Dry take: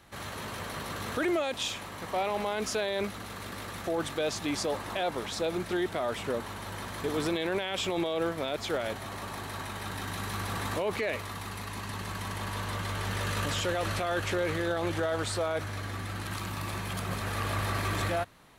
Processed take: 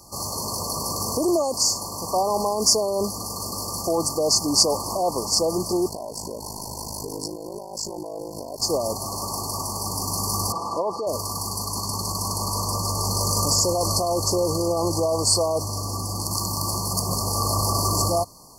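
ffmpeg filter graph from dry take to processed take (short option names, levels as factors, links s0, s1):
-filter_complex "[0:a]asettb=1/sr,asplit=3[s0][s1][s2];[s0]atrim=end=5.884[s3];[s1]atrim=start=5.88:end=8.62,asetpts=PTS-STARTPTS,afade=t=in:d=0.004:c=qsin,afade=t=out:st=2.736:d=0.004:c=qsin,acompressor=threshold=0.02:ratio=6:attack=3.2:release=140:knee=1:detection=peak,aeval=exprs='val(0)*sin(2*PI*26*n/s)':c=same,asuperstop=centerf=1500:order=20:qfactor=1.4[s4];[s2]atrim=start=8.616[s5];[s3][s4]acrossfade=d=0.004:c1=hsin:c2=qsin[s6];[s6][s5]acrossfade=d=0.004:c1=qsin:c2=hsin,asettb=1/sr,asplit=3[s7][s8][s9];[s7]atrim=end=10.524[s10];[s8]atrim=start=10.52:end=11.07,asetpts=PTS-STARTPTS,afade=t=in:d=0.004:c=qsin,afade=t=out:st=0.546:d=0.004:c=qsin,lowpass=1600,aemphasis=mode=production:type=riaa,aecho=1:1:6:0.31,atrim=end_sample=24255[s11];[s9]atrim=start=11.066[s12];[s10][s11]acrossfade=d=0.004:c1=hsin:c2=qsin[s13];[s13][s12]acrossfade=d=0.004:c1=qsin:c2=hsin,highshelf=f=2100:g=10.5,afftfilt=real='re*(1-between(b*sr/4096,1200,4300))':imag='im*(1-between(b*sr/4096,1200,4300))':win_size=4096:overlap=0.75,equalizer=f=3800:w=0.78:g=4.5,volume=2.24"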